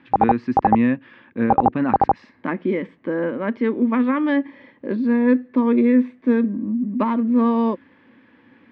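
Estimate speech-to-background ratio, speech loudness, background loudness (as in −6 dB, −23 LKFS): 0.0 dB, −21.0 LKFS, −21.0 LKFS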